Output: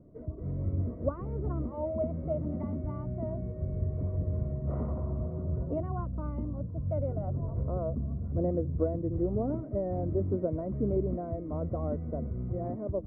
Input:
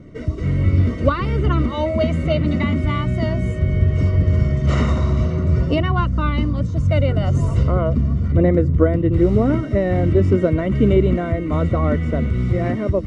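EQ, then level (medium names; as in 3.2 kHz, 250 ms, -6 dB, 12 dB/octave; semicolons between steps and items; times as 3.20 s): four-pole ladder low-pass 940 Hz, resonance 35%; -8.0 dB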